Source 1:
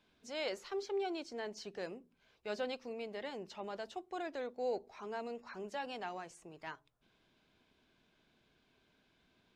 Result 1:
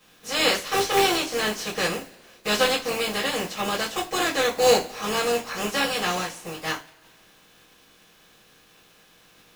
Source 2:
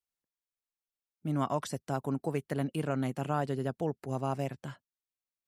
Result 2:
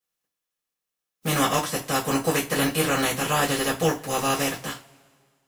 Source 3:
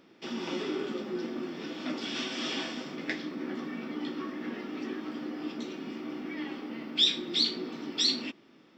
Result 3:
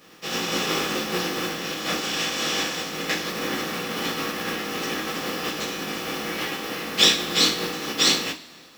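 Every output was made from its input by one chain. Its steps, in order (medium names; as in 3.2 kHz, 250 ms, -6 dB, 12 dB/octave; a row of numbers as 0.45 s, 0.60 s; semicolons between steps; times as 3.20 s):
spectral contrast reduction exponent 0.46; two-slope reverb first 0.24 s, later 1.9 s, from -27 dB, DRR -8.5 dB; normalise loudness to -24 LUFS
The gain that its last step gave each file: +8.5 dB, +0.5 dB, -0.5 dB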